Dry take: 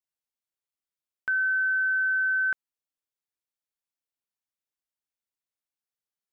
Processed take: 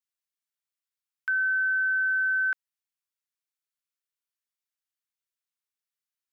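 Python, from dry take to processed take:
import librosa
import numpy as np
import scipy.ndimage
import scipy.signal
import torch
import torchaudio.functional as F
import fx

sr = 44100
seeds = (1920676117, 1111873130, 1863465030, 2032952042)

y = scipy.signal.sosfilt(scipy.signal.butter(4, 1100.0, 'highpass', fs=sr, output='sos'), x)
y = fx.quant_dither(y, sr, seeds[0], bits=12, dither='triangular', at=(2.06, 2.51), fade=0.02)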